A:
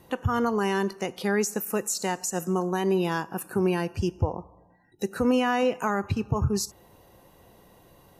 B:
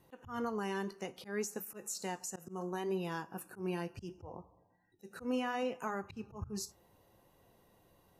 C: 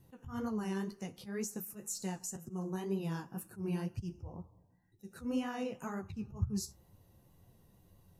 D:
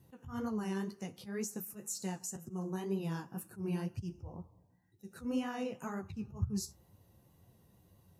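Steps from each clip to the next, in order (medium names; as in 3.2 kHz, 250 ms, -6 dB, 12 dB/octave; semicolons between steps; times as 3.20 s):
flange 0.67 Hz, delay 6.9 ms, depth 5.4 ms, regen -63%; slow attack 135 ms; trim -7.5 dB
tone controls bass +15 dB, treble +7 dB; flange 2 Hz, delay 7.8 ms, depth 8.5 ms, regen -29%; trim -2 dB
high-pass 54 Hz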